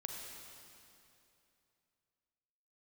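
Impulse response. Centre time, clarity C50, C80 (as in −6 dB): 107 ms, 1.5 dB, 2.5 dB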